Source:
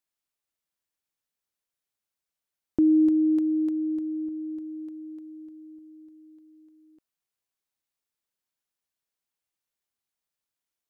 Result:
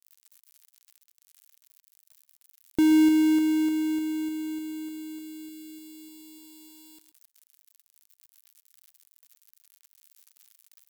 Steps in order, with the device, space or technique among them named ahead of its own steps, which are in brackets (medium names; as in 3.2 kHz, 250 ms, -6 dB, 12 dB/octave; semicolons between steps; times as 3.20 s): budget class-D amplifier (dead-time distortion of 0.25 ms; zero-crossing glitches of -32 dBFS); delay 131 ms -15.5 dB